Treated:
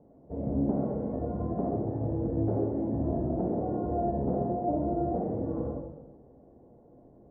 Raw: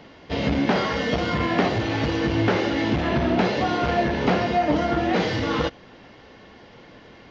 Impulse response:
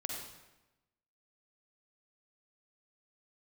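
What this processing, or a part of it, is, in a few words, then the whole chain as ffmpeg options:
next room: -filter_complex "[0:a]lowpass=frequency=670:width=0.5412,lowpass=frequency=670:width=1.3066[link_01];[1:a]atrim=start_sample=2205[link_02];[link_01][link_02]afir=irnorm=-1:irlink=0,volume=-8dB"

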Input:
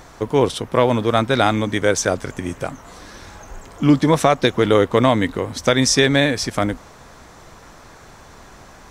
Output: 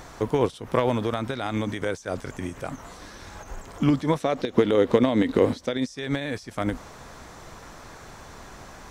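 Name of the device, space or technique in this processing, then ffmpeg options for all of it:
de-esser from a sidechain: -filter_complex "[0:a]asettb=1/sr,asplit=3[link_01][link_02][link_03];[link_01]atrim=end=4.204[link_04];[link_02]atrim=start=4.2:end=5.87,asetpts=PTS-STARTPTS,afade=type=in:duration=0.004:curve=qsin,afade=type=out:start_time=1.666:duration=0.004:curve=qsin,equalizer=frequency=250:width_type=o:width=1:gain=9,equalizer=frequency=500:width_type=o:width=1:gain=8,equalizer=frequency=2000:width_type=o:width=1:gain=3,equalizer=frequency=4000:width_type=o:width=1:gain=7[link_05];[link_03]atrim=start=5.866[link_06];[link_04][link_05]acrossfade=duration=0.004:curve1=hsin:curve2=qsin[link_07];[link_07][link_06]acrossfade=duration=0.004:curve1=qsin:curve2=hsin,asplit=2[link_08][link_09];[link_09]highpass=frequency=4500:width=0.5412,highpass=frequency=4500:width=1.3066,apad=whole_len=392872[link_10];[link_08][link_10]sidechaincompress=threshold=-49dB:ratio=4:attack=2.8:release=68"

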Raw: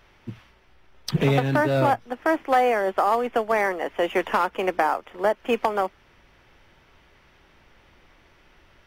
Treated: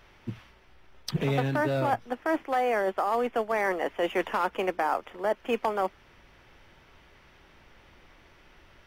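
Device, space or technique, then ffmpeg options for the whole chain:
compression on the reversed sound: -af "areverse,acompressor=threshold=-23dB:ratio=6,areverse"

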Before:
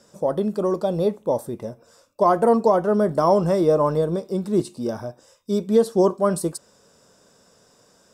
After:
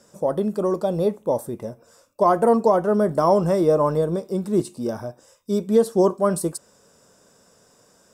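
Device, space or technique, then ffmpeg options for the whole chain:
exciter from parts: -filter_complex "[0:a]asplit=2[link_01][link_02];[link_02]highpass=2900,asoftclip=type=tanh:threshold=-30.5dB,highpass=4300,volume=-5.5dB[link_03];[link_01][link_03]amix=inputs=2:normalize=0"

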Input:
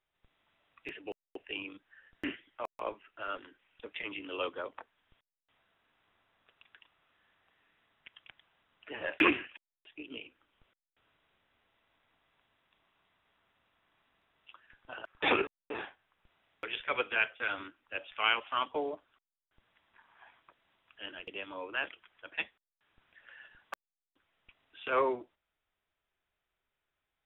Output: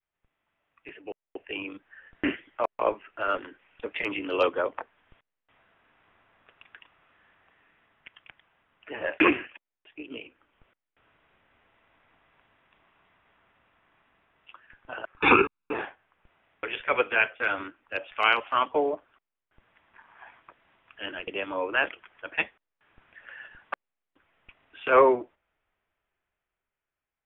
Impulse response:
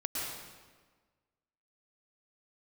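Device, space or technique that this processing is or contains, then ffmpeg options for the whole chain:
action camera in a waterproof case: -filter_complex "[0:a]asettb=1/sr,asplit=3[link_01][link_02][link_03];[link_01]atrim=end=15.174[link_04];[link_02]atrim=start=15.17:end=15.73,asetpts=PTS-STARTPTS,afade=type=in:duration=0.004:curve=qsin,afade=type=out:start_time=0.556:duration=0.004:curve=qsin,aecho=1:1:0.8:0.97,atrim=end_sample=24696[link_05];[link_03]atrim=start=15.726[link_06];[link_04][link_05]acrossfade=duration=0.004:curve1=hsin:curve2=qsin[link_07];[link_07][link_06]acrossfade=duration=0.004:curve1=qsin:curve2=hsin,adynamicequalizer=threshold=0.00398:dfrequency=550:dqfactor=0.94:tfrequency=550:tqfactor=0.94:attack=5:release=100:ratio=0.375:range=1.5:mode=boostabove:tftype=bell,lowpass=frequency=2800:width=0.5412,lowpass=frequency=2800:width=1.3066,dynaudnorm=framelen=180:gausssize=17:maxgain=14dB,volume=-4dB" -ar 32000 -c:a aac -b:a 64k

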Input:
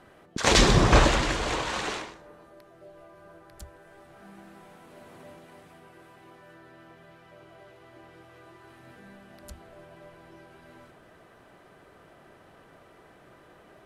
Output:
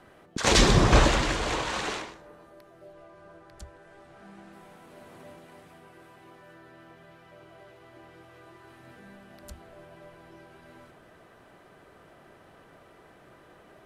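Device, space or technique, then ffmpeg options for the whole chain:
one-band saturation: -filter_complex "[0:a]acrossover=split=410|4000[link_01][link_02][link_03];[link_02]asoftclip=type=tanh:threshold=-15.5dB[link_04];[link_01][link_04][link_03]amix=inputs=3:normalize=0,asettb=1/sr,asplit=3[link_05][link_06][link_07];[link_05]atrim=end=2.934[link_08];[link_06]atrim=start=2.93:end=4.53,asetpts=PTS-STARTPTS,afade=type=in:duration=0.004:curve=qsin,afade=type=out:start_time=1.596:duration=0.004:curve=qsin,lowpass=8600[link_09];[link_07]atrim=start=4.526[link_10];[link_08][link_09]acrossfade=duration=0.004:curve1=hsin:curve2=qsin[link_11];[link_11][link_10]acrossfade=duration=0.004:curve1=qsin:curve2=hsin"

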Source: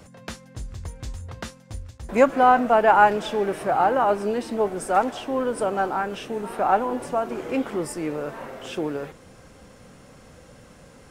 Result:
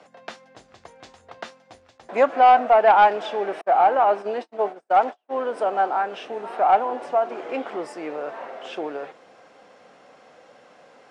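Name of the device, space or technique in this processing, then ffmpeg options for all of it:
intercom: -filter_complex "[0:a]asettb=1/sr,asplit=3[link_01][link_02][link_03];[link_01]atrim=end=3.614[link_04];[link_02]atrim=start=3.61:end=5.44,asetpts=PTS-STARTPTS,afade=type=in:duration=0.004:curve=qsin,afade=type=out:start_time=1.826:duration=0.004:curve=qsin,agate=range=-44dB:threshold=-26dB:ratio=16:detection=peak[link_05];[link_03]atrim=start=5.436[link_06];[link_04][link_05]acrossfade=duration=0.004:curve1=hsin:curve2=qsin[link_07];[link_07][link_06]acrossfade=duration=0.004:curve1=qsin:curve2=hsin,highpass=410,lowpass=4200,equalizer=frequency=720:width_type=o:width=0.41:gain=7,asoftclip=type=tanh:threshold=-6.5dB"

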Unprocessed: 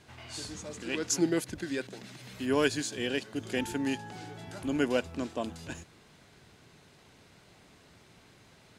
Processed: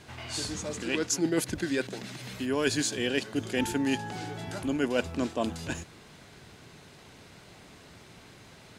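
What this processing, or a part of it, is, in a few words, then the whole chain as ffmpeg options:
compression on the reversed sound: -af "areverse,acompressor=threshold=-30dB:ratio=6,areverse,volume=6.5dB"

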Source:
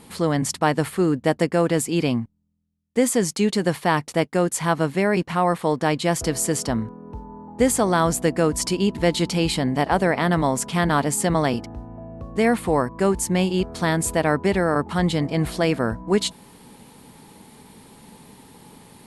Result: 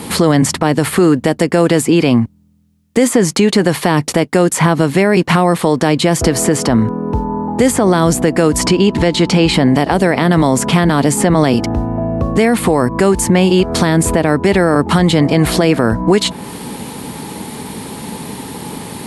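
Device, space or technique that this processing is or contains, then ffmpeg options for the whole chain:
mastering chain: -filter_complex "[0:a]highpass=55,equalizer=frequency=320:width_type=o:width=0.77:gain=2,acrossover=split=520|2600[link_01][link_02][link_03];[link_01]acompressor=threshold=-22dB:ratio=4[link_04];[link_02]acompressor=threshold=-27dB:ratio=4[link_05];[link_03]acompressor=threshold=-36dB:ratio=4[link_06];[link_04][link_05][link_06]amix=inputs=3:normalize=0,acompressor=threshold=-27dB:ratio=2.5,alimiter=level_in=20.5dB:limit=-1dB:release=50:level=0:latency=1,asettb=1/sr,asplit=3[link_07][link_08][link_09];[link_07]atrim=end=8.674[link_10];[link_08]atrim=start=8.67:end=9.54,asetpts=PTS-STARTPTS,afade=type=in:duration=0.004:curve=qsin,afade=type=out:start_time=0.866:duration=0.004:curve=qsin,lowpass=8000[link_11];[link_09]atrim=start=9.536[link_12];[link_10][link_11]acrossfade=duration=0.004:curve1=hsin:curve2=qsin[link_13];[link_13][link_12]acrossfade=duration=0.004:curve1=qsin:curve2=hsin,volume=-1dB"

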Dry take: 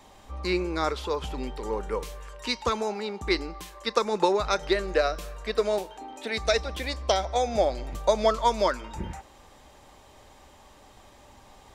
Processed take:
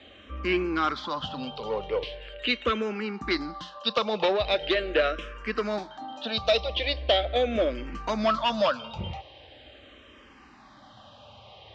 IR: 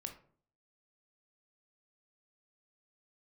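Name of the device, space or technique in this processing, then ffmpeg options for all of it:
barber-pole phaser into a guitar amplifier: -filter_complex "[0:a]asplit=2[link_01][link_02];[link_02]afreqshift=-0.41[link_03];[link_01][link_03]amix=inputs=2:normalize=1,asoftclip=type=tanh:threshold=-22dB,highpass=87,equalizer=frequency=170:width_type=q:width=4:gain=-6,equalizer=frequency=400:width_type=q:width=4:gain=-7,equalizer=frequency=910:width_type=q:width=4:gain=-9,equalizer=frequency=2000:width_type=q:width=4:gain=-3,equalizer=frequency=3000:width_type=q:width=4:gain=7,lowpass=frequency=4200:width=0.5412,lowpass=frequency=4200:width=1.3066,volume=8dB"

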